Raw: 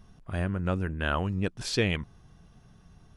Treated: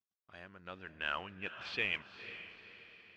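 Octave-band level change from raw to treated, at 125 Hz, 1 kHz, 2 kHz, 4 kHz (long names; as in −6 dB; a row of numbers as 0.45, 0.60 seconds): −26.5, −9.0, −3.5, −6.5 decibels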